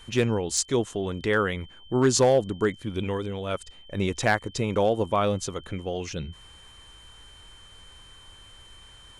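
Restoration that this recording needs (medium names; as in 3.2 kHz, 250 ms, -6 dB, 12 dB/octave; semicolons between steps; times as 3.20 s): clip repair -12.5 dBFS; band-stop 3.1 kHz, Q 30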